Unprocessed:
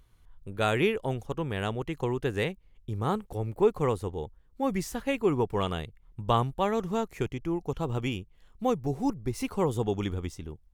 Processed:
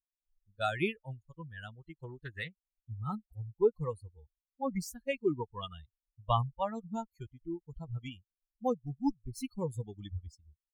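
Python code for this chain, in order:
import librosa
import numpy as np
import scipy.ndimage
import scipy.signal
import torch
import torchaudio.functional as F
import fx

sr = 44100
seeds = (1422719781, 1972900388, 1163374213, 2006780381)

y = fx.bin_expand(x, sr, power=3.0)
y = fx.doppler_dist(y, sr, depth_ms=0.24, at=(1.93, 3.01))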